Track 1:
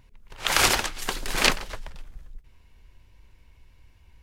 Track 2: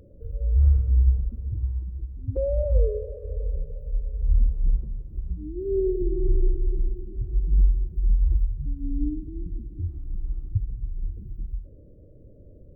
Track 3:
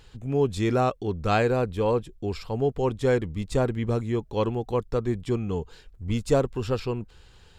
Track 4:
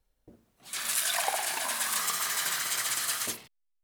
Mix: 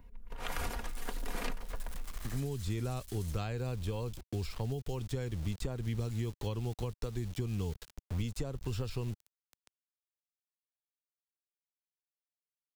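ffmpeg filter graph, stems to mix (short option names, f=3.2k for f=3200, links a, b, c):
-filter_complex "[0:a]equalizer=f=4.9k:w=0.37:g=-12.5,aecho=1:1:4.2:0.55,volume=0dB[a];[2:a]adelay=2100,volume=3dB[b];[3:a]acompressor=threshold=-44dB:ratio=2,volume=-5dB[c];[b][c]amix=inputs=2:normalize=0,aeval=exprs='val(0)*gte(abs(val(0)),0.0126)':c=same,acompressor=threshold=-22dB:ratio=6,volume=0dB[d];[a][d]amix=inputs=2:normalize=0,acrossover=split=140|3000[e][f][g];[e]acompressor=threshold=-34dB:ratio=4[h];[f]acompressor=threshold=-42dB:ratio=4[i];[g]acompressor=threshold=-49dB:ratio=4[j];[h][i][j]amix=inputs=3:normalize=0"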